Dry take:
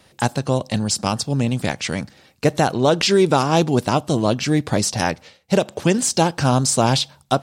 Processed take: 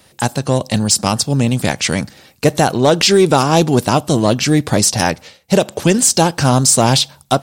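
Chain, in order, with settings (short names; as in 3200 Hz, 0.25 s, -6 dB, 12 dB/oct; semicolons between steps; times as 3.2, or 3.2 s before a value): high shelf 8500 Hz +10 dB; AGC; soft clip -3 dBFS, distortion -22 dB; gain +2.5 dB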